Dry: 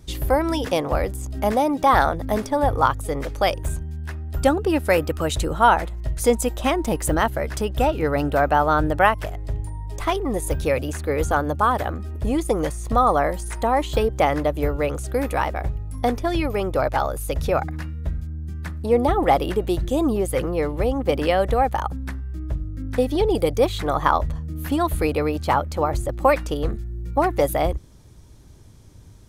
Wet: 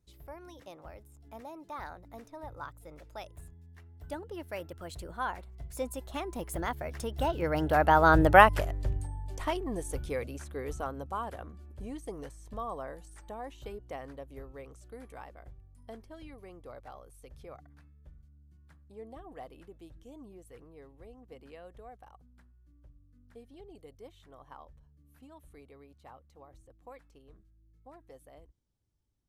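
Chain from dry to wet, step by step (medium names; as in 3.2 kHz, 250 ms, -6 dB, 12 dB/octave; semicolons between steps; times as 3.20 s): Doppler pass-by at 8.37 s, 26 m/s, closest 10 m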